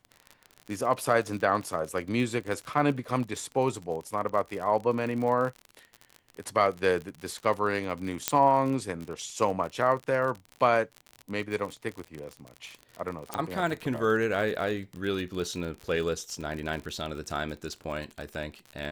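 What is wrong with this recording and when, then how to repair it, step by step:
crackle 49/s -33 dBFS
8.28 pop -5 dBFS
13.34 pop -16 dBFS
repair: de-click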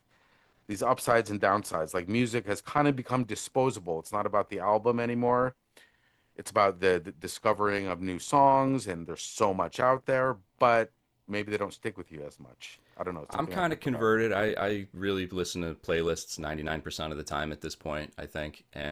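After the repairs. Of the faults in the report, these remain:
13.34 pop

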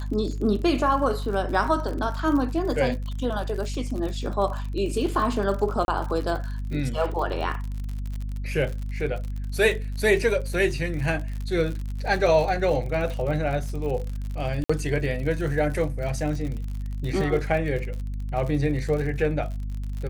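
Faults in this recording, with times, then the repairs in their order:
crackle 59/s -31 dBFS
hum 50 Hz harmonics 5 -30 dBFS
5.85–5.88 gap 31 ms
14.64–14.7 gap 55 ms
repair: de-click; de-hum 50 Hz, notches 5; interpolate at 5.85, 31 ms; interpolate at 14.64, 55 ms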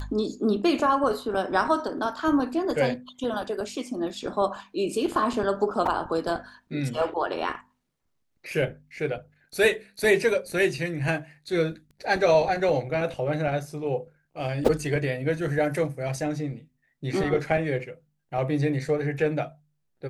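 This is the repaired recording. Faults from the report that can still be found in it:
none

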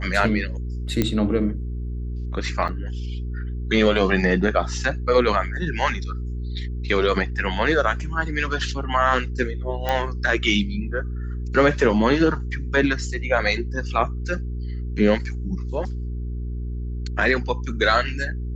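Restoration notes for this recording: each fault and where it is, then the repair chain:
hum 60 Hz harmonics 7 -28 dBFS
1.02 pop -7 dBFS
2.68–2.69 gap 7.3 ms
9.89 pop -10 dBFS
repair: de-click; de-hum 60 Hz, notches 7; interpolate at 2.68, 7.3 ms

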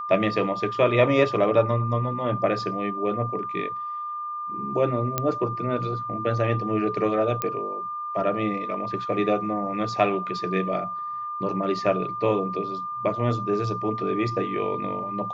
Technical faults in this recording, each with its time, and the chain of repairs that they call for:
tone 1200 Hz -29 dBFS
5.18 pop -8 dBFS
7.42 pop -11 dBFS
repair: de-click; notch 1200 Hz, Q 30

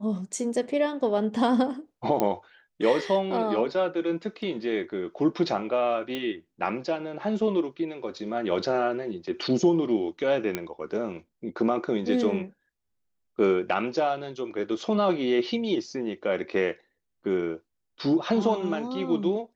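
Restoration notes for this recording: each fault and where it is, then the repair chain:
2.2 pop -11 dBFS
6.15 pop -18 dBFS
10.55 pop -13 dBFS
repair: de-click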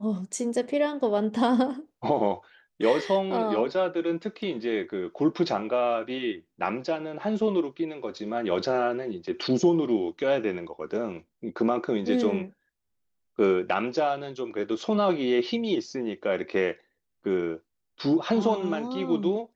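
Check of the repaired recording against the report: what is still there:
none

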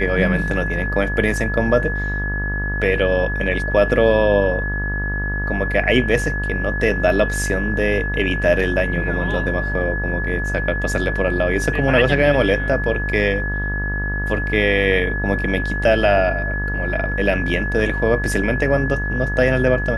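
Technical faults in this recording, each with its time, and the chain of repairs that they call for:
buzz 50 Hz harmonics 37 -24 dBFS
tone 1700 Hz -24 dBFS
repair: notch 1700 Hz, Q 30; de-hum 50 Hz, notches 37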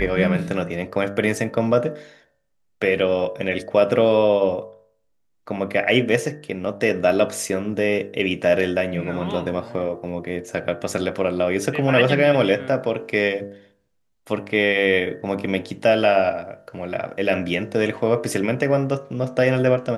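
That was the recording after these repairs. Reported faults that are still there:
none

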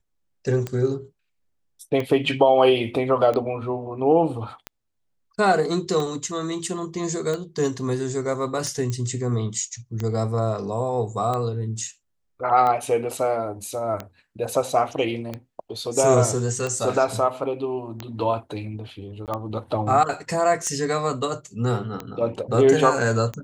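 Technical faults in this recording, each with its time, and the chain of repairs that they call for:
tick 45 rpm -15 dBFS
8.9 pop -16 dBFS
19.26–19.28 gap 18 ms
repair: de-click; interpolate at 19.26, 18 ms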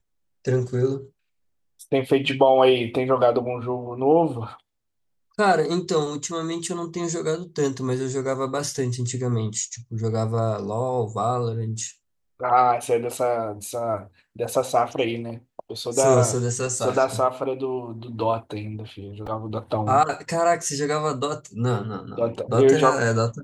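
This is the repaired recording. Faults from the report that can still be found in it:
none

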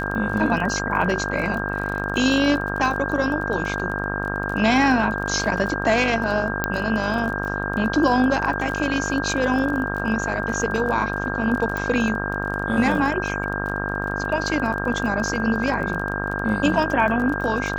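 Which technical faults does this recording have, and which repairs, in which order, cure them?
buzz 50 Hz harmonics 34 -28 dBFS
crackle 25/s -28 dBFS
tone 1600 Hz -28 dBFS
6.64 pop -6 dBFS
11.77 pop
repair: de-click; de-hum 50 Hz, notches 34; notch 1600 Hz, Q 30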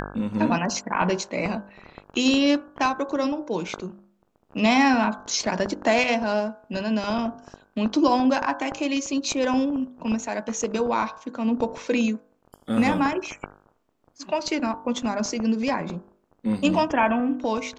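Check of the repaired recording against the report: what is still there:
none

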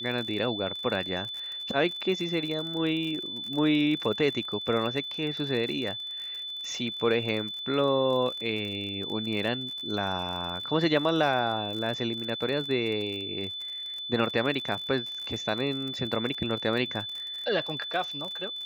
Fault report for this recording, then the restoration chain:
crackle 43/s -34 dBFS
tone 3500 Hz -34 dBFS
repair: de-click; notch 3500 Hz, Q 30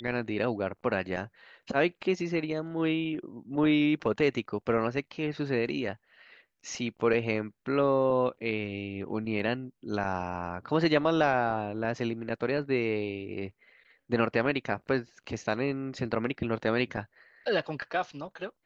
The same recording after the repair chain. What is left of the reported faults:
none

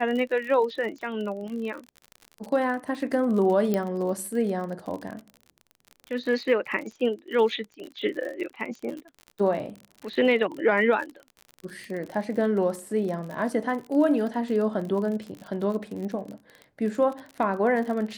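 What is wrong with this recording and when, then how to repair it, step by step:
crackle 45/s -33 dBFS
3.74 pop -13 dBFS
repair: de-click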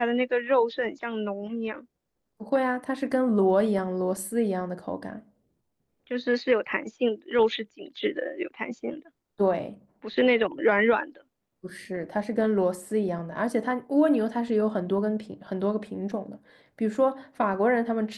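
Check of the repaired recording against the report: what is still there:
3.74 pop

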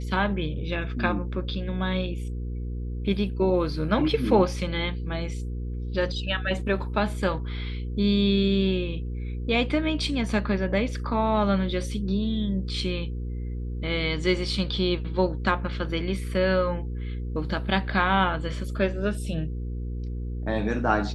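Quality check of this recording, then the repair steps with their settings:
hum 60 Hz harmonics 8 -31 dBFS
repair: de-hum 60 Hz, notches 8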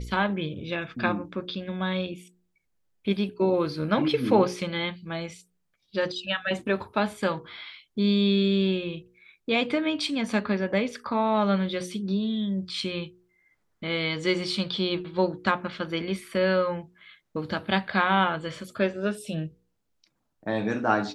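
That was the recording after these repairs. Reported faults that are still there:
none

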